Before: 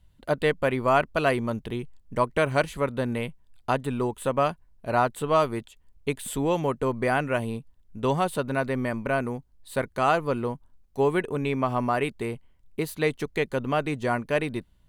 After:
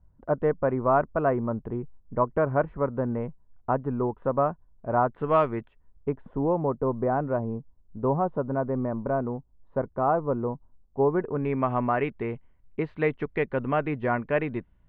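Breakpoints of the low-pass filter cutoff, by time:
low-pass filter 24 dB per octave
0:05.05 1,300 Hz
0:05.38 2,500 Hz
0:06.31 1,100 Hz
0:11.06 1,100 Hz
0:11.64 2,300 Hz

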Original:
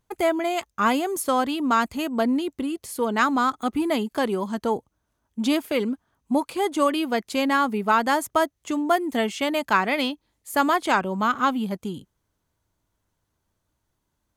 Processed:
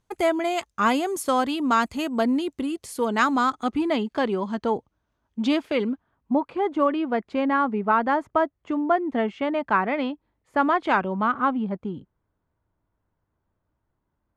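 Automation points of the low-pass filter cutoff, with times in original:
0:03.33 10,000 Hz
0:03.99 4,200 Hz
0:05.70 4,200 Hz
0:06.35 1,700 Hz
0:10.51 1,700 Hz
0:11.04 3,000 Hz
0:11.38 1,600 Hz

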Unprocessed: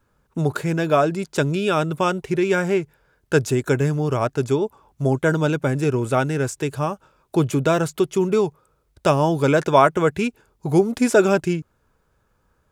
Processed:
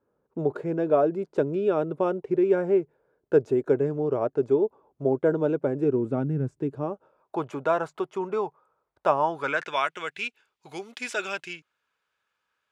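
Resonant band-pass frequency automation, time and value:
resonant band-pass, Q 1.5
0:05.73 440 Hz
0:06.41 170 Hz
0:07.37 910 Hz
0:09.17 910 Hz
0:09.82 2,800 Hz

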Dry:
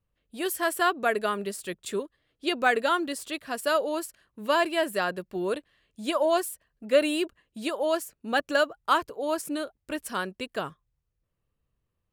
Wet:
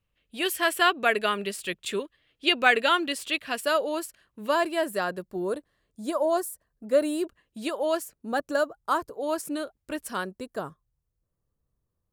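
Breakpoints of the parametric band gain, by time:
parametric band 2,700 Hz 1.2 octaves
+9.5 dB
from 0:03.62 +2 dB
from 0:04.49 −4.5 dB
from 0:05.25 −13 dB
from 0:07.24 −1.5 dB
from 0:08.14 −12.5 dB
from 0:09.17 −2.5 dB
from 0:10.24 −14 dB

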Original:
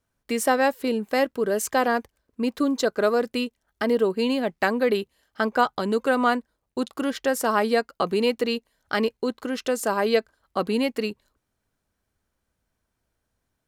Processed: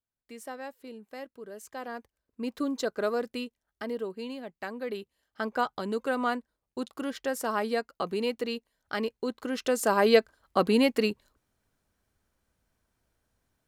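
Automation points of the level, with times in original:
0:01.64 −19.5 dB
0:02.54 −7.5 dB
0:03.19 −7.5 dB
0:04.54 −16 dB
0:05.53 −7.5 dB
0:09.05 −7.5 dB
0:10.07 +1 dB

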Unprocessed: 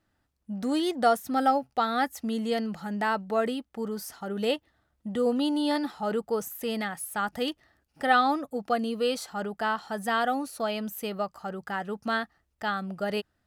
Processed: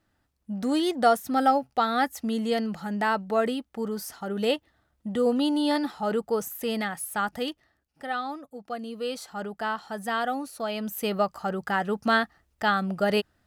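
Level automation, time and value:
0:07.21 +2 dB
0:08.09 −9 dB
0:08.59 −9 dB
0:09.38 −1.5 dB
0:10.65 −1.5 dB
0:11.12 +6 dB

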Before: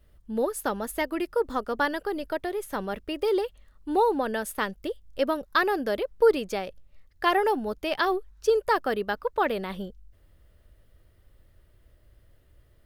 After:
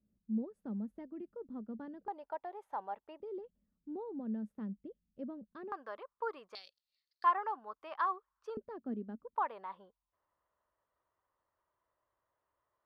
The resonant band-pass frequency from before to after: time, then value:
resonant band-pass, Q 6.2
210 Hz
from 0:02.08 860 Hz
from 0:03.20 210 Hz
from 0:05.72 1,100 Hz
from 0:06.55 4,400 Hz
from 0:07.24 1,100 Hz
from 0:08.57 230 Hz
from 0:09.35 1,000 Hz

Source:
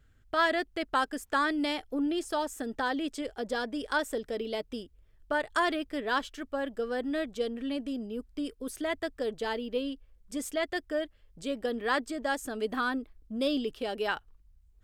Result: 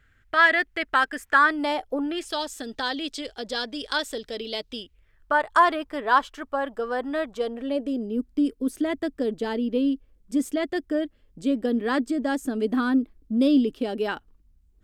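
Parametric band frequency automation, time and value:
parametric band +13 dB 1.3 octaves
0:01.28 1,900 Hz
0:01.90 550 Hz
0:02.35 4,100 Hz
0:04.69 4,100 Hz
0:05.40 1,000 Hz
0:07.38 1,000 Hz
0:08.19 260 Hz

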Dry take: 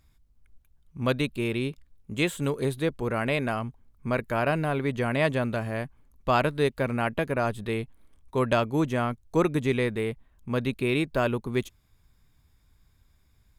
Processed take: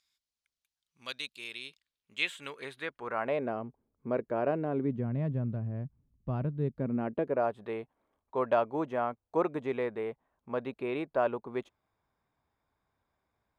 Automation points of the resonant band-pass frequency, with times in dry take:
resonant band-pass, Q 1.3
0:01.60 4,700 Hz
0:02.96 1,600 Hz
0:03.50 430 Hz
0:04.60 430 Hz
0:05.14 130 Hz
0:06.57 130 Hz
0:07.56 740 Hz

